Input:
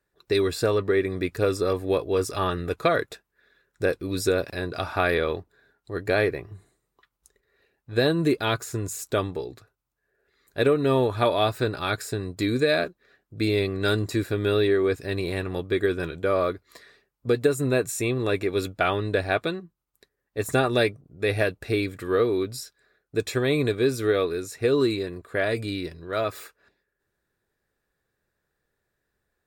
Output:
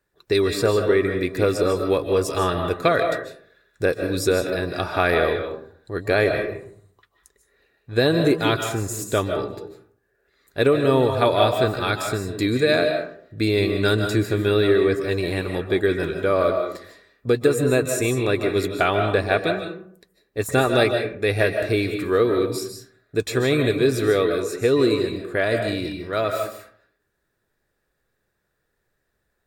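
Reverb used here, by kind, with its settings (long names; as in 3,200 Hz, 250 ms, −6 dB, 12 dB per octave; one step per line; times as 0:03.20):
comb and all-pass reverb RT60 0.57 s, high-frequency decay 0.5×, pre-delay 110 ms, DRR 5 dB
level +3 dB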